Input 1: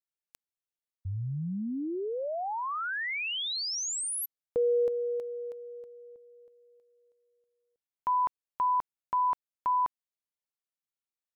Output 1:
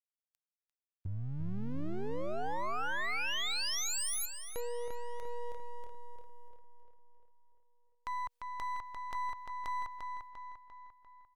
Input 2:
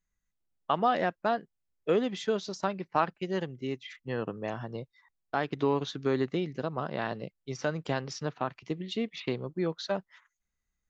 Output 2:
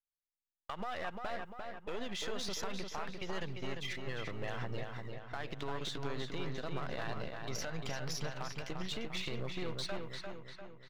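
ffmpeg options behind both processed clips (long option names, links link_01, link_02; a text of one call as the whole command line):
ffmpeg -i in.wav -filter_complex "[0:a]aeval=exprs='if(lt(val(0),0),0.447*val(0),val(0))':channel_layout=same,agate=range=-33dB:threshold=-54dB:ratio=3:release=448:detection=peak,equalizer=frequency=270:width=0.43:gain=-12,acompressor=threshold=-42dB:ratio=10:attack=0.35:release=106:knee=1:detection=peak,asplit=2[link_01][link_02];[link_02]adelay=347,lowpass=frequency=4300:poles=1,volume=-4.5dB,asplit=2[link_03][link_04];[link_04]adelay=347,lowpass=frequency=4300:poles=1,volume=0.54,asplit=2[link_05][link_06];[link_06]adelay=347,lowpass=frequency=4300:poles=1,volume=0.54,asplit=2[link_07][link_08];[link_08]adelay=347,lowpass=frequency=4300:poles=1,volume=0.54,asplit=2[link_09][link_10];[link_10]adelay=347,lowpass=frequency=4300:poles=1,volume=0.54,asplit=2[link_11][link_12];[link_12]adelay=347,lowpass=frequency=4300:poles=1,volume=0.54,asplit=2[link_13][link_14];[link_14]adelay=347,lowpass=frequency=4300:poles=1,volume=0.54[link_15];[link_01][link_03][link_05][link_07][link_09][link_11][link_13][link_15]amix=inputs=8:normalize=0,volume=9.5dB" out.wav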